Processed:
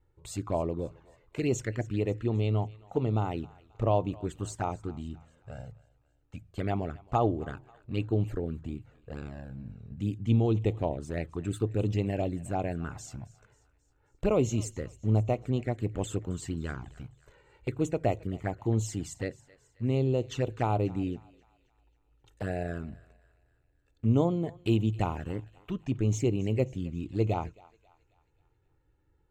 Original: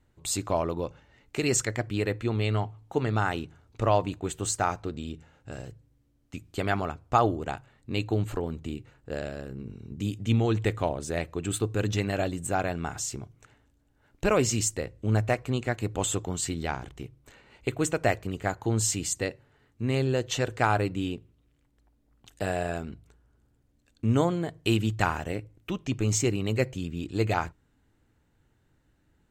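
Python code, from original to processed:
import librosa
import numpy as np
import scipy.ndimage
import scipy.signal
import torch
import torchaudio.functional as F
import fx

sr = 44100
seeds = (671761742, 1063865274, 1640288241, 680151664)

p1 = fx.high_shelf(x, sr, hz=2100.0, db=-11.5)
p2 = fx.env_flanger(p1, sr, rest_ms=2.3, full_db=-23.5)
y = p2 + fx.echo_thinned(p2, sr, ms=268, feedback_pct=52, hz=730.0, wet_db=-20.0, dry=0)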